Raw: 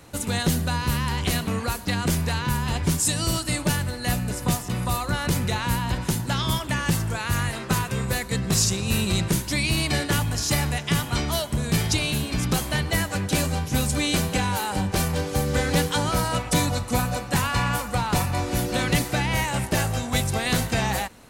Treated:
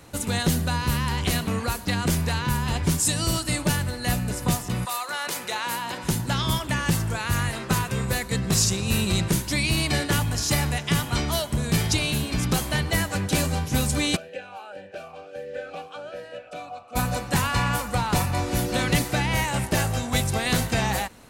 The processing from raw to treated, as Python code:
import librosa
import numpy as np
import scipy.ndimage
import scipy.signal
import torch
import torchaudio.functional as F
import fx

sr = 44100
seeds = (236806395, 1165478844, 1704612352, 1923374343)

y = fx.highpass(x, sr, hz=fx.line((4.84, 860.0), (6.03, 310.0)), slope=12, at=(4.84, 6.03), fade=0.02)
y = fx.vowel_sweep(y, sr, vowels='a-e', hz=fx.line((14.15, 2.2), (16.95, 0.89)), at=(14.15, 16.95), fade=0.02)